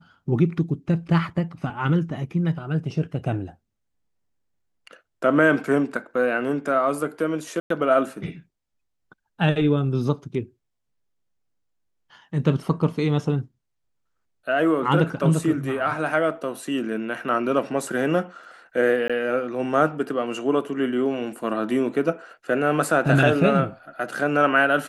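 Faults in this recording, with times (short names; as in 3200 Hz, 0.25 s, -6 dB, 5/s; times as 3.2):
7.6–7.7 gap 0.103 s
19.08–19.1 gap 16 ms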